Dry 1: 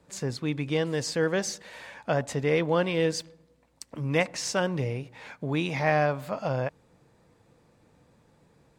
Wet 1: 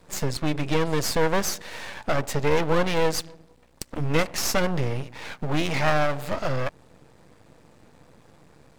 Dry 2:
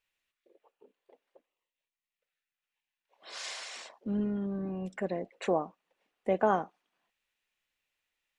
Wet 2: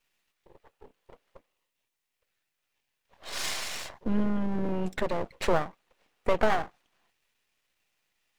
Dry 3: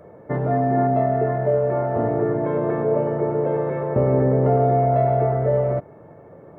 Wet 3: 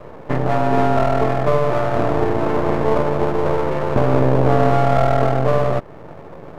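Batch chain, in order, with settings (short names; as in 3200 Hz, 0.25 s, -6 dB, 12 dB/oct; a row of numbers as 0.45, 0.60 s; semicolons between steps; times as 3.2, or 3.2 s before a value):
in parallel at +1 dB: compressor, threshold -30 dBFS; on the sum: half-wave rectifier; gain +5 dB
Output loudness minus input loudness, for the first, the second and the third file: +2.5, +3.0, +2.5 LU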